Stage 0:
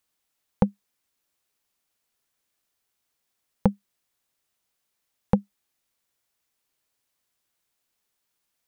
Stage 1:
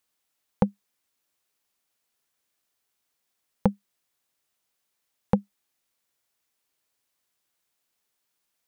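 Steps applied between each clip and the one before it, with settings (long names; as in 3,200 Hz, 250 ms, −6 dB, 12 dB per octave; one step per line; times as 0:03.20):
low-shelf EQ 120 Hz −5.5 dB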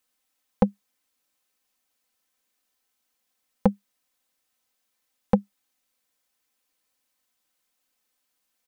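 comb filter 3.9 ms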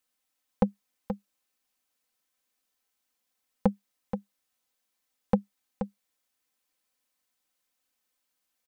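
single-tap delay 478 ms −9 dB
level −4 dB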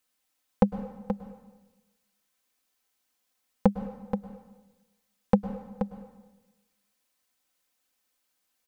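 dense smooth reverb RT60 1.1 s, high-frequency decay 0.9×, pre-delay 95 ms, DRR 11 dB
level +3 dB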